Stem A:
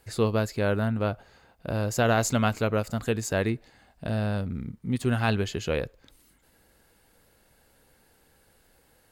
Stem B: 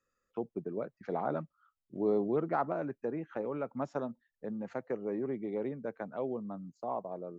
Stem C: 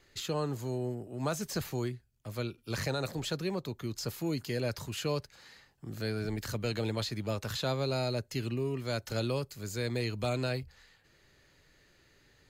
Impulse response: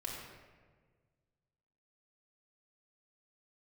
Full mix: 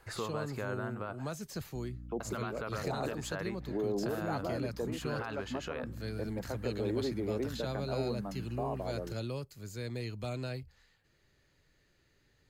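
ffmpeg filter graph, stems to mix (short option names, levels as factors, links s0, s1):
-filter_complex "[0:a]acompressor=threshold=0.0251:ratio=6,equalizer=f=1200:w=0.76:g=14,volume=0.447,asplit=3[s0][s1][s2];[s0]atrim=end=1.31,asetpts=PTS-STARTPTS,afade=t=out:st=1.306:d=0.004:c=hsin[s3];[s1]atrim=start=1.31:end=2.2,asetpts=PTS-STARTPTS,volume=0[s4];[s2]atrim=start=2.2,asetpts=PTS-STARTPTS,afade=t=in:d=0.004:c=hsin[s5];[s3][s4][s5]concat=n=3:v=0:a=1,asplit=2[s6][s7];[1:a]aeval=exprs='val(0)+0.00447*(sin(2*PI*60*n/s)+sin(2*PI*2*60*n/s)/2+sin(2*PI*3*60*n/s)/3+sin(2*PI*4*60*n/s)/4+sin(2*PI*5*60*n/s)/5)':c=same,adelay=1750,volume=1.12[s8];[2:a]volume=0.398[s9];[s7]apad=whole_len=403010[s10];[s8][s10]sidechaincompress=threshold=0.00794:ratio=8:attack=33:release=163[s11];[s6][s11]amix=inputs=2:normalize=0,acrossover=split=230[s12][s13];[s12]acompressor=threshold=0.00398:ratio=6[s14];[s14][s13]amix=inputs=2:normalize=0,alimiter=level_in=1.58:limit=0.0631:level=0:latency=1:release=20,volume=0.631,volume=1[s15];[s9][s15]amix=inputs=2:normalize=0,lowshelf=f=270:g=4.5"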